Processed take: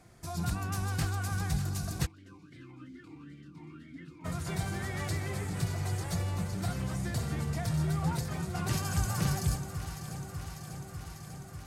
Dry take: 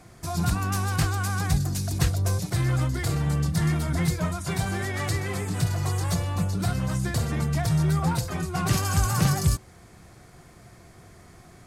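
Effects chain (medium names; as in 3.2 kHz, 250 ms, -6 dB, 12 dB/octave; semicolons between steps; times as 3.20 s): band-stop 1.1 kHz, Q 19; echo whose repeats swap between lows and highs 298 ms, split 860 Hz, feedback 87%, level -9.5 dB; 2.05–4.24 s: talking filter i-u 3.6 Hz -> 1.4 Hz; trim -8 dB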